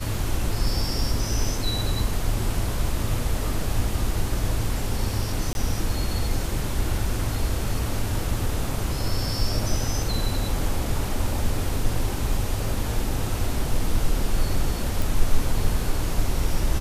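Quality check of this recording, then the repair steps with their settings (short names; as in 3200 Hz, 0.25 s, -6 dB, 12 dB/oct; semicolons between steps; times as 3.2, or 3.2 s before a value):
5.53–5.55 gap 21 ms
15.02 pop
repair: de-click; interpolate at 5.53, 21 ms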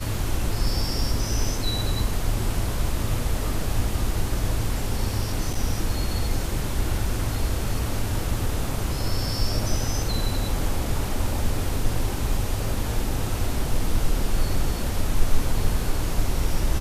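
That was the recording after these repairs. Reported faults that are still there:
none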